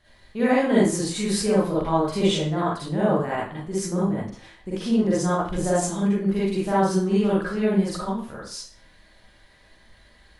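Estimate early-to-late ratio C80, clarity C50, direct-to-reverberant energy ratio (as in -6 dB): 5.0 dB, -3.5 dB, -8.5 dB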